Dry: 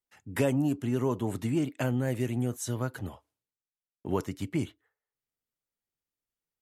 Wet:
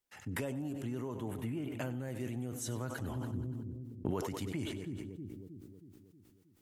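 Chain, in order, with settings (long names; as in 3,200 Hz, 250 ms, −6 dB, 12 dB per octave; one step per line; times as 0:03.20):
0:01.28–0:01.77: flat-topped bell 5,600 Hz −10.5 dB 1.3 octaves
echo with a time of its own for lows and highs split 370 Hz, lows 317 ms, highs 95 ms, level −14.5 dB
downward compressor 12 to 1, threshold −40 dBFS, peak gain reduction 19 dB
0:03.11–0:04.11: low-shelf EQ 310 Hz +7.5 dB
level that may fall only so fast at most 28 dB per second
level +4 dB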